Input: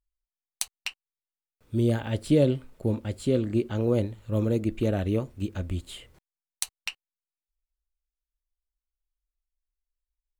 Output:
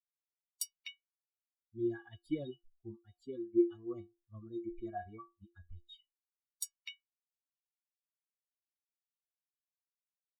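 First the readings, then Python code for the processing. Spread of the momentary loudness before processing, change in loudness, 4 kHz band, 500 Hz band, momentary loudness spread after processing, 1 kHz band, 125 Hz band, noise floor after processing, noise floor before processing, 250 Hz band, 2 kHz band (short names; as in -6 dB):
12 LU, -11.5 dB, -12.0 dB, -12.5 dB, 21 LU, -7.5 dB, -25.0 dB, under -85 dBFS, under -85 dBFS, -11.5 dB, -14.5 dB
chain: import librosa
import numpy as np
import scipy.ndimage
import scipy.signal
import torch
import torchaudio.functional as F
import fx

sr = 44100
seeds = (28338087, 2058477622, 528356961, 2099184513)

y = fx.bin_expand(x, sr, power=3.0)
y = fx.stiff_resonator(y, sr, f0_hz=340.0, decay_s=0.28, stiffness=0.03)
y = y * librosa.db_to_amplitude(8.5)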